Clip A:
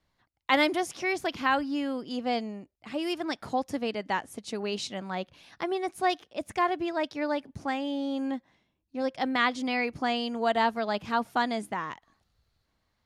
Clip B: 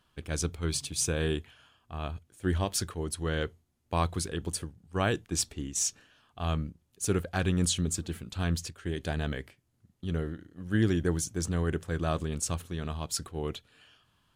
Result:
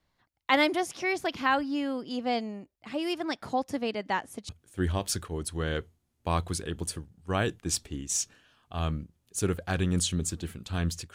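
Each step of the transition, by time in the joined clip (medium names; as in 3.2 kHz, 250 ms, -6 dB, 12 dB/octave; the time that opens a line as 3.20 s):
clip A
4.49 s: go over to clip B from 2.15 s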